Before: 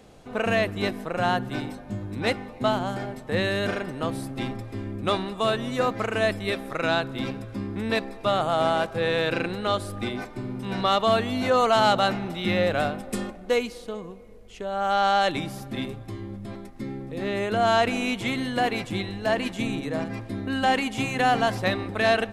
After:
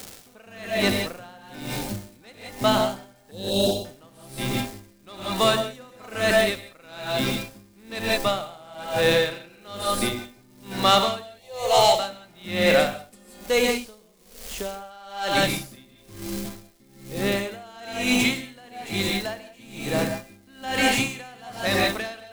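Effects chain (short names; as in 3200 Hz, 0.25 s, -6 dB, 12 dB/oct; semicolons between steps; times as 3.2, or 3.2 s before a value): crackle 440/s -34 dBFS; 3.31–3.85 Chebyshev band-stop 850–3300 Hz, order 3; 11.22–11.99 fixed phaser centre 600 Hz, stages 4; non-linear reverb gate 0.2 s rising, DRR 1.5 dB; in parallel at -3.5 dB: soft clip -18.5 dBFS, distortion -13 dB; on the sum: high shelf 3500 Hz +10 dB; dB-linear tremolo 1.1 Hz, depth 29 dB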